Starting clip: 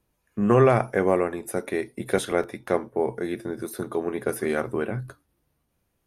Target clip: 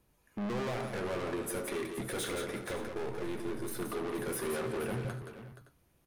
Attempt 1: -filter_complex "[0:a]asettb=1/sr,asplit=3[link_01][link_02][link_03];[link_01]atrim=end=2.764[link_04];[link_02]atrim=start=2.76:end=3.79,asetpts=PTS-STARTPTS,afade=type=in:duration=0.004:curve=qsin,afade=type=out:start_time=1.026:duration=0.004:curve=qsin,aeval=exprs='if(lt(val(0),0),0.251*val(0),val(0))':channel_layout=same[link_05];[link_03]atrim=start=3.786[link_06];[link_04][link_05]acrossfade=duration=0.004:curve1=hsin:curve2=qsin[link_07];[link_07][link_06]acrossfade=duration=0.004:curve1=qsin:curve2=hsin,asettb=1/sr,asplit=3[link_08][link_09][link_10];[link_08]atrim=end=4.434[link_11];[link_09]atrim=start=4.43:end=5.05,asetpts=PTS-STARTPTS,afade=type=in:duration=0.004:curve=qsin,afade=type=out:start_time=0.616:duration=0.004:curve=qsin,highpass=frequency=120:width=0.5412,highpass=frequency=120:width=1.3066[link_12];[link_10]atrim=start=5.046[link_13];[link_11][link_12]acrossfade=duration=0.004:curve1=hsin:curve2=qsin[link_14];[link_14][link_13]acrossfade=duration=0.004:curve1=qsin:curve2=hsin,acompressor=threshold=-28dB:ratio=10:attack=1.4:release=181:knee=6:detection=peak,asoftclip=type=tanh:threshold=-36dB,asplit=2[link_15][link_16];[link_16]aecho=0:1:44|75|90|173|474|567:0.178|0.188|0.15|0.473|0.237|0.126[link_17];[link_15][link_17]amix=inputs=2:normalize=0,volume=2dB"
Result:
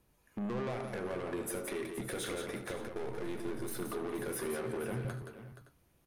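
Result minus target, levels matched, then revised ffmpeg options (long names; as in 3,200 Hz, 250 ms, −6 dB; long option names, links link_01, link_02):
downward compressor: peak gain reduction +9 dB
-filter_complex "[0:a]asettb=1/sr,asplit=3[link_01][link_02][link_03];[link_01]atrim=end=2.764[link_04];[link_02]atrim=start=2.76:end=3.79,asetpts=PTS-STARTPTS,afade=type=in:duration=0.004:curve=qsin,afade=type=out:start_time=1.026:duration=0.004:curve=qsin,aeval=exprs='if(lt(val(0),0),0.251*val(0),val(0))':channel_layout=same[link_05];[link_03]atrim=start=3.786[link_06];[link_04][link_05]acrossfade=duration=0.004:curve1=hsin:curve2=qsin[link_07];[link_07][link_06]acrossfade=duration=0.004:curve1=qsin:curve2=hsin,asettb=1/sr,asplit=3[link_08][link_09][link_10];[link_08]atrim=end=4.434[link_11];[link_09]atrim=start=4.43:end=5.05,asetpts=PTS-STARTPTS,afade=type=in:duration=0.004:curve=qsin,afade=type=out:start_time=0.616:duration=0.004:curve=qsin,highpass=frequency=120:width=0.5412,highpass=frequency=120:width=1.3066[link_12];[link_10]atrim=start=5.046[link_13];[link_11][link_12]acrossfade=duration=0.004:curve1=hsin:curve2=qsin[link_14];[link_14][link_13]acrossfade=duration=0.004:curve1=qsin:curve2=hsin,acompressor=threshold=-18dB:ratio=10:attack=1.4:release=181:knee=6:detection=peak,asoftclip=type=tanh:threshold=-36dB,asplit=2[link_15][link_16];[link_16]aecho=0:1:44|75|90|173|474|567:0.178|0.188|0.15|0.473|0.237|0.126[link_17];[link_15][link_17]amix=inputs=2:normalize=0,volume=2dB"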